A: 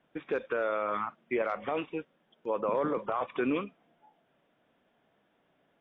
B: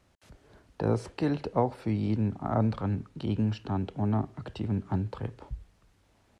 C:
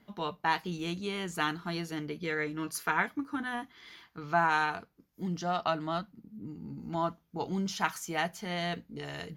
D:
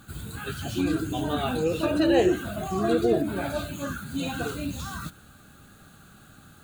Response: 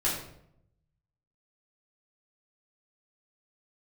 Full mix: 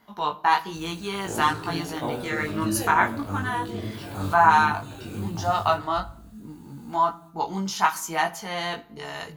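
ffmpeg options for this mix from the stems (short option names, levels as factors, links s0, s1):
-filter_complex "[0:a]adelay=1600,volume=0.224[s0];[1:a]adelay=450,volume=0.531,asplit=2[s1][s2];[s2]volume=0.398[s3];[2:a]equalizer=f=990:w=1.2:g=11.5,volume=1.33,asplit=3[s4][s5][s6];[s5]volume=0.0708[s7];[3:a]adelay=650,volume=0.631,asplit=2[s8][s9];[s9]volume=0.0794[s10];[s6]apad=whole_len=321267[s11];[s8][s11]sidechaincompress=threshold=0.0251:ratio=8:attack=38:release=1380[s12];[4:a]atrim=start_sample=2205[s13];[s3][s7][s10]amix=inputs=3:normalize=0[s14];[s14][s13]afir=irnorm=-1:irlink=0[s15];[s0][s1][s4][s12][s15]amix=inputs=5:normalize=0,highshelf=f=4000:g=11,flanger=delay=18.5:depth=2.7:speed=1.1"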